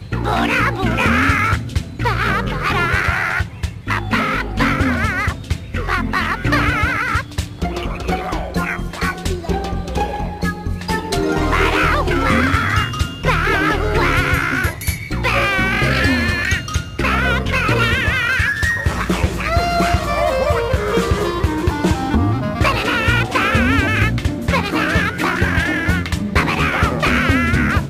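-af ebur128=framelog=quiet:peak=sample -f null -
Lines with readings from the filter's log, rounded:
Integrated loudness:
  I:         -17.5 LUFS
  Threshold: -27.5 LUFS
Loudness range:
  LRA:         3.6 LU
  Threshold: -37.6 LUFS
  LRA low:   -20.0 LUFS
  LRA high:  -16.3 LUFS
Sample peak:
  Peak:       -2.8 dBFS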